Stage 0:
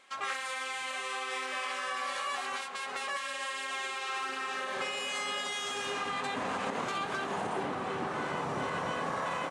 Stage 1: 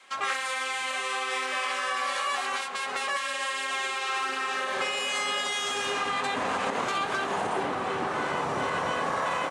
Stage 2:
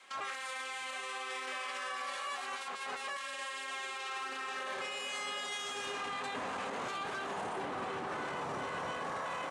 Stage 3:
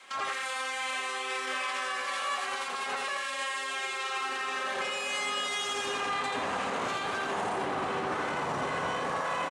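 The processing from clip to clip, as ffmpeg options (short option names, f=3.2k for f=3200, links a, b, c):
-af "adynamicequalizer=threshold=0.00282:dfrequency=170:dqfactor=0.84:tfrequency=170:tqfactor=0.84:attack=5:release=100:ratio=0.375:range=2.5:mode=cutabove:tftype=bell,volume=6dB"
-af "alimiter=level_in=3.5dB:limit=-24dB:level=0:latency=1:release=14,volume=-3.5dB,volume=-3.5dB"
-af "aecho=1:1:85:0.596,volume=5.5dB"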